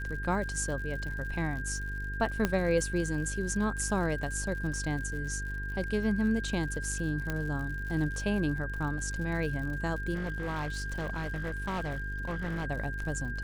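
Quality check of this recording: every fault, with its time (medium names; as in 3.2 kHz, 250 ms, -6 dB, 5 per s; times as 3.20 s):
buzz 50 Hz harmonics 9 -37 dBFS
crackle 86 per s -39 dBFS
whine 1.6 kHz -38 dBFS
2.45 s: pop -13 dBFS
7.30 s: pop -18 dBFS
10.14–12.67 s: clipped -30 dBFS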